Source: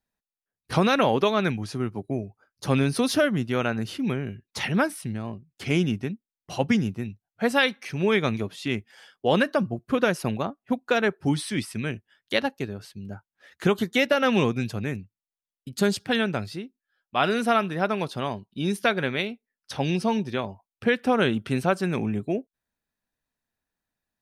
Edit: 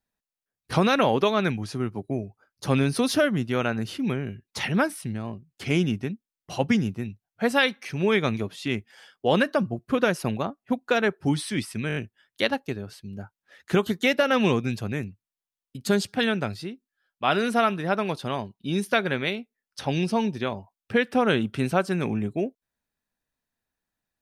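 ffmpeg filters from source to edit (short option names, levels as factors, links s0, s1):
-filter_complex "[0:a]asplit=5[s0][s1][s2][s3][s4];[s0]atrim=end=11.902[s5];[s1]atrim=start=11.878:end=11.902[s6];[s2]atrim=start=11.878:end=11.902[s7];[s3]atrim=start=11.878:end=11.902[s8];[s4]atrim=start=11.878[s9];[s5][s6]acrossfade=d=0.004:c1=hsin:c2=hsin[s10];[s10][s7]acrossfade=d=0.004:c1=hsin:c2=hsin[s11];[s11][s8]acrossfade=d=0.004:c1=hsin:c2=hsin[s12];[s12][s9]acrossfade=d=0.004:c1=hsin:c2=hsin"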